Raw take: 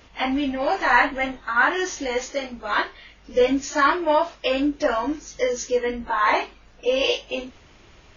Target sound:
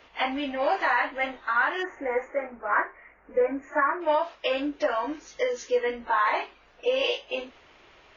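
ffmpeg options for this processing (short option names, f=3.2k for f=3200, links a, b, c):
-filter_complex "[0:a]asplit=3[a][b][c];[a]afade=t=out:st=1.82:d=0.02[d];[b]asuperstop=centerf=4300:order=8:qfactor=0.69,afade=t=in:st=1.82:d=0.02,afade=t=out:st=4:d=0.02[e];[c]afade=t=in:st=4:d=0.02[f];[d][e][f]amix=inputs=3:normalize=0,alimiter=limit=-13.5dB:level=0:latency=1:release=348,acrossover=split=350 4100:gain=0.2 1 0.224[g][h][i];[g][h][i]amix=inputs=3:normalize=0"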